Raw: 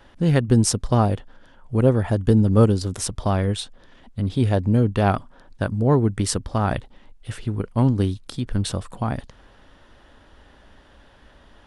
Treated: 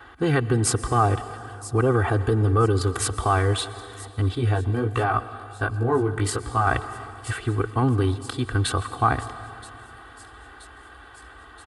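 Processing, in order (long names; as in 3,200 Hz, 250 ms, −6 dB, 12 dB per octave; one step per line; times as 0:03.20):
high-pass filter 49 Hz 24 dB per octave
parametric band 5,700 Hz −10 dB 0.28 octaves
delay with a high-pass on its return 976 ms, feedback 69%, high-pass 4,300 Hz, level −16 dB
brickwall limiter −14 dBFS, peak gain reduction 9.5 dB
parametric band 1,300 Hz +12 dB 0.96 octaves
comb filter 2.6 ms, depth 90%
convolution reverb RT60 2.8 s, pre-delay 110 ms, DRR 13.5 dB
0:04.35–0:06.67: chorus effect 1.4 Hz, delay 16.5 ms, depth 3.9 ms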